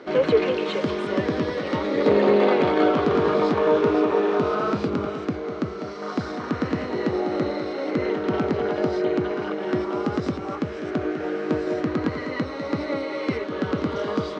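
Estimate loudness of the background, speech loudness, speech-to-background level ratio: -24.0 LUFS, -27.5 LUFS, -3.5 dB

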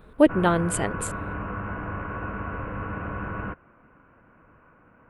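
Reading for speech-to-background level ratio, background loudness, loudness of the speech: 10.5 dB, -33.5 LUFS, -23.0 LUFS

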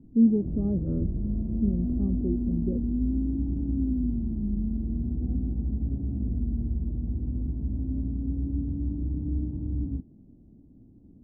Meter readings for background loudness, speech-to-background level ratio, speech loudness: -30.5 LUFS, 2.0 dB, -28.5 LUFS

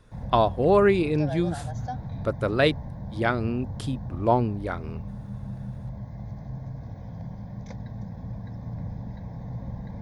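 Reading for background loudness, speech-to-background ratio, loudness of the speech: -36.5 LUFS, 12.0 dB, -24.5 LUFS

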